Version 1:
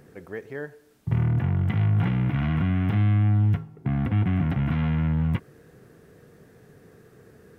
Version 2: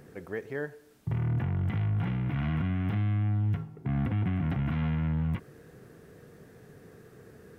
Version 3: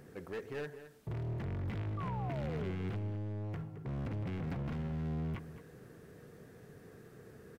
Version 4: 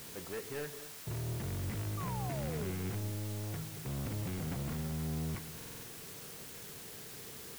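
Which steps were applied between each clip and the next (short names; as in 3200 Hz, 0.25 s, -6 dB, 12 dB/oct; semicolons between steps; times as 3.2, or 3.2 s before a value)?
limiter -22.5 dBFS, peak gain reduction 9.5 dB
overloaded stage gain 33.5 dB; painted sound fall, 1.97–2.71, 360–1200 Hz -41 dBFS; outdoor echo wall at 37 m, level -12 dB; gain -3 dB
in parallel at -10.5 dB: requantised 6-bit, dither triangular; on the sum: stuck buffer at 5.56, samples 2048, times 5; gain -2.5 dB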